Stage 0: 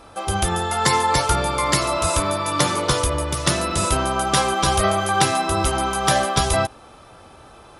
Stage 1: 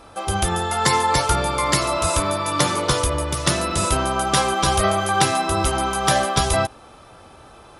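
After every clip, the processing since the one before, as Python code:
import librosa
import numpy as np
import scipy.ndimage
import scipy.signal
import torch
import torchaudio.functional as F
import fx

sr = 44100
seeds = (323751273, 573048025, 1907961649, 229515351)

y = x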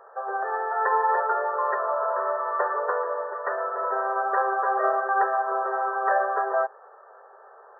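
y = fx.brickwall_bandpass(x, sr, low_hz=380.0, high_hz=1900.0)
y = y * librosa.db_to_amplitude(-2.5)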